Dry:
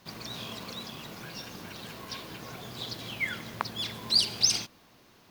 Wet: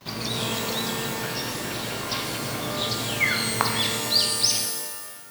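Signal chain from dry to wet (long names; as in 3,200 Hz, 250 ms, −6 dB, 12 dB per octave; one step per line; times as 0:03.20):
noise gate with hold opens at −52 dBFS
speech leveller within 4 dB 0.5 s
reverb with rising layers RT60 1.3 s, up +12 semitones, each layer −2 dB, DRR 3 dB
level +5 dB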